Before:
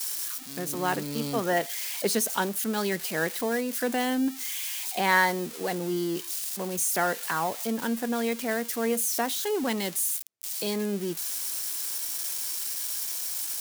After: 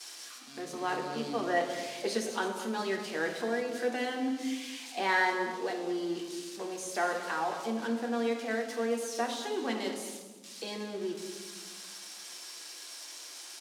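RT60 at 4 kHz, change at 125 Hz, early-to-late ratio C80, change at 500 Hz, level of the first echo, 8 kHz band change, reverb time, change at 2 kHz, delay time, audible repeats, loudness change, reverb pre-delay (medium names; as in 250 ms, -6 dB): 0.80 s, -11.5 dB, 7.0 dB, -3.0 dB, -13.0 dB, -12.5 dB, 1.4 s, -4.0 dB, 218 ms, 1, -6.0 dB, 3 ms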